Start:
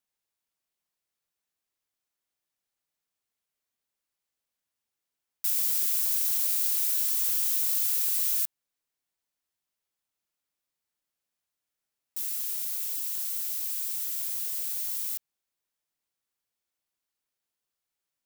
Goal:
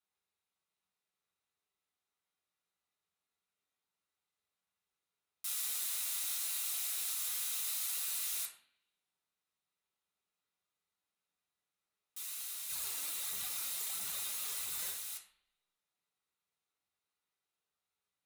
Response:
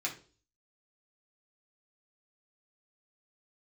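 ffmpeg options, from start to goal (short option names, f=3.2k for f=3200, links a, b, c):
-filter_complex "[0:a]asplit=3[a][b][c];[a]afade=t=out:st=12.68:d=0.02[d];[b]aphaser=in_gain=1:out_gain=1:delay=4:decay=0.73:speed=1.5:type=triangular,afade=t=in:st=12.68:d=0.02,afade=t=out:st=14.9:d=0.02[e];[c]afade=t=in:st=14.9:d=0.02[f];[d][e][f]amix=inputs=3:normalize=0[g];[1:a]atrim=start_sample=2205,asetrate=24696,aresample=44100[h];[g][h]afir=irnorm=-1:irlink=0,volume=-8dB"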